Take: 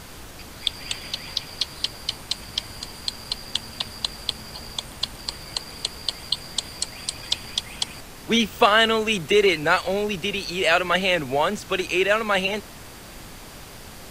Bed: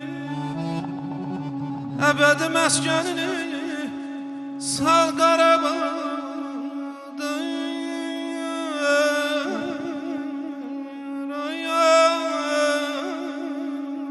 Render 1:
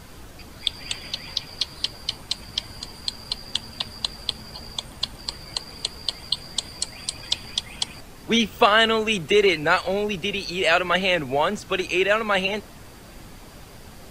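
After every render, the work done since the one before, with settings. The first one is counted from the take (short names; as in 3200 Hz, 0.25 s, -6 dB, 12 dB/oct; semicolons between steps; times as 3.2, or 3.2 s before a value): denoiser 6 dB, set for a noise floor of -41 dBFS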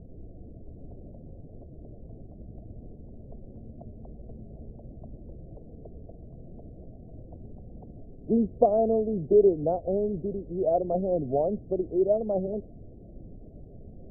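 Wiener smoothing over 41 samples; Chebyshev low-pass 690 Hz, order 5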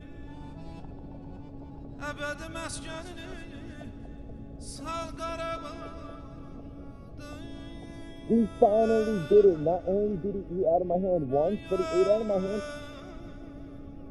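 add bed -18 dB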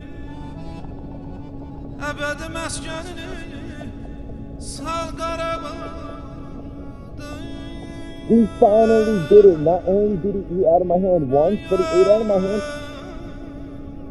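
gain +9.5 dB; limiter -1 dBFS, peak gain reduction 3 dB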